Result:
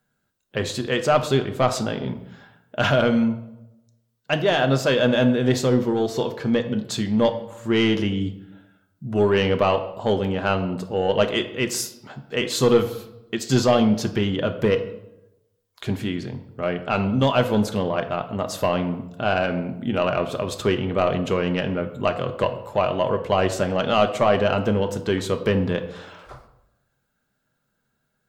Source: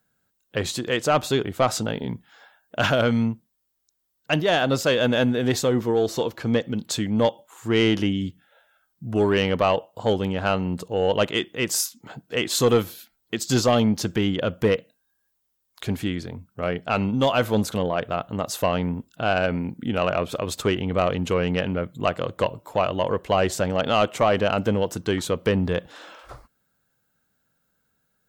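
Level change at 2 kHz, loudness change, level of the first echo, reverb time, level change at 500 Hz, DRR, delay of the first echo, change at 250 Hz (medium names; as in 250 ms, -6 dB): +0.5 dB, +1.0 dB, no echo, 0.90 s, +1.5 dB, 6.0 dB, no echo, +1.5 dB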